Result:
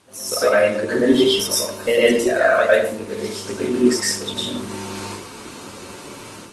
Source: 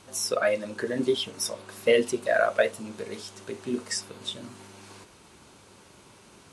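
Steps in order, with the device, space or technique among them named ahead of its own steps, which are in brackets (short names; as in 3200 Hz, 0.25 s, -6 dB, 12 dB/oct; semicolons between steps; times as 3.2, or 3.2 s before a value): far-field microphone of a smart speaker (reverb RT60 0.50 s, pre-delay 0.101 s, DRR -7.5 dB; HPF 120 Hz 6 dB/oct; AGC gain up to 10 dB; gain -1 dB; Opus 20 kbps 48000 Hz)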